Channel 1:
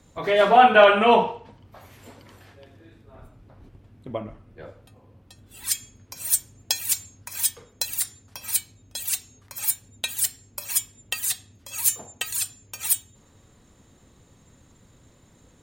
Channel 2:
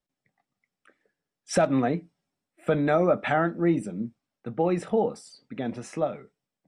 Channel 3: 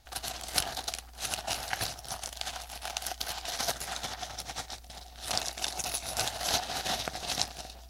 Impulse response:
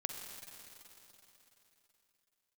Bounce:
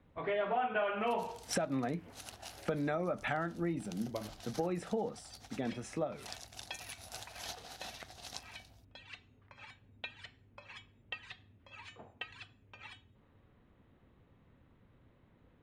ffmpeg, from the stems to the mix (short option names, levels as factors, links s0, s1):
-filter_complex "[0:a]lowpass=f=2900:w=0.5412,lowpass=f=2900:w=1.3066,volume=0.335[s0];[1:a]adynamicequalizer=threshold=0.02:dfrequency=420:dqfactor=0.76:tfrequency=420:tqfactor=0.76:attack=5:release=100:ratio=0.375:range=3.5:mode=cutabove:tftype=bell,volume=0.562,asplit=2[s1][s2];[2:a]adelay=950,volume=0.168[s3];[s2]apad=whole_len=390204[s4];[s3][s4]sidechaincompress=threshold=0.02:ratio=8:attack=16:release=339[s5];[s0][s1][s5]amix=inputs=3:normalize=0,acompressor=threshold=0.0282:ratio=5"